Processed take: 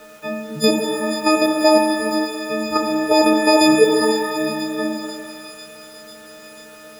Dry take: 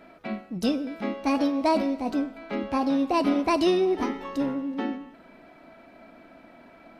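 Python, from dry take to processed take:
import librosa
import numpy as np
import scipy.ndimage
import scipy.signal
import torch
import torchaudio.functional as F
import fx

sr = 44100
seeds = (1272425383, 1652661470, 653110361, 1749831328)

p1 = fx.freq_snap(x, sr, grid_st=6)
p2 = scipy.signal.sosfilt(scipy.signal.butter(2, 48.0, 'highpass', fs=sr, output='sos'), p1)
p3 = fx.level_steps(p2, sr, step_db=22)
p4 = p2 + (p3 * 10.0 ** (0.0 / 20.0))
p5 = fx.quant_dither(p4, sr, seeds[0], bits=8, dither='none')
p6 = fx.small_body(p5, sr, hz=(480.0, 1400.0), ring_ms=30, db=12)
p7 = p6 + fx.echo_wet_highpass(p6, sr, ms=494, feedback_pct=71, hz=3000.0, wet_db=-9.5, dry=0)
y = fx.rev_shimmer(p7, sr, seeds[1], rt60_s=1.6, semitones=12, shimmer_db=-8, drr_db=2.5)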